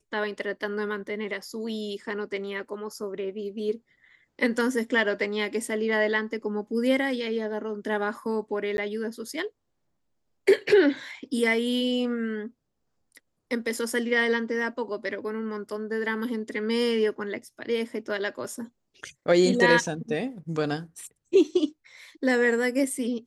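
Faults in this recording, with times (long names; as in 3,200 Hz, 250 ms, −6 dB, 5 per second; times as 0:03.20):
0:08.77–0:08.78: drop-out 11 ms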